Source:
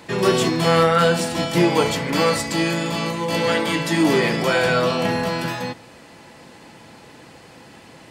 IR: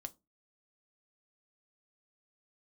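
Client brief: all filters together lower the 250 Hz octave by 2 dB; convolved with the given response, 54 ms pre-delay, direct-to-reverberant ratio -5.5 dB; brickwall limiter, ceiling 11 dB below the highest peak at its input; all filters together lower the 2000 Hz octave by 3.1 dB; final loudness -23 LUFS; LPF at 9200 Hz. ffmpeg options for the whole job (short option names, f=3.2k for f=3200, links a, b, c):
-filter_complex "[0:a]lowpass=9.2k,equalizer=f=250:t=o:g=-3,equalizer=f=2k:t=o:g=-4,alimiter=limit=-17dB:level=0:latency=1,asplit=2[a][b];[1:a]atrim=start_sample=2205,adelay=54[c];[b][c]afir=irnorm=-1:irlink=0,volume=9.5dB[d];[a][d]amix=inputs=2:normalize=0,volume=-3.5dB"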